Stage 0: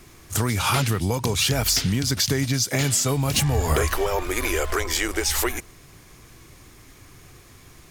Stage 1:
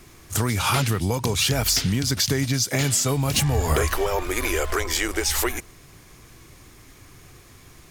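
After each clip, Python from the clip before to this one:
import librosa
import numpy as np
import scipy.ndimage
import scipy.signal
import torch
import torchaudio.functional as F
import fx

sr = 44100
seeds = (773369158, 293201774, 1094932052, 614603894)

y = x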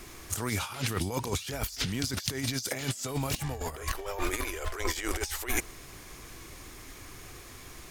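y = fx.peak_eq(x, sr, hz=130.0, db=-7.0, octaves=1.5)
y = fx.over_compress(y, sr, threshold_db=-29.0, ratio=-0.5)
y = F.gain(torch.from_numpy(y), -2.5).numpy()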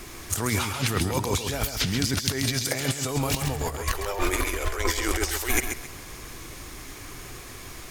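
y = fx.echo_feedback(x, sr, ms=134, feedback_pct=26, wet_db=-7.5)
y = F.gain(torch.from_numpy(y), 5.5).numpy()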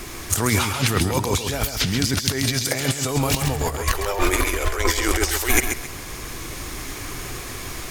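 y = fx.rider(x, sr, range_db=4, speed_s=2.0)
y = F.gain(torch.from_numpy(y), 4.5).numpy()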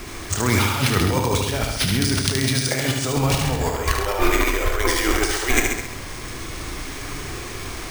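y = fx.doubler(x, sr, ms=31.0, db=-11)
y = y + 10.0 ** (-4.5 / 20.0) * np.pad(y, (int(74 * sr / 1000.0), 0))[:len(y)]
y = np.repeat(scipy.signal.resample_poly(y, 1, 3), 3)[:len(y)]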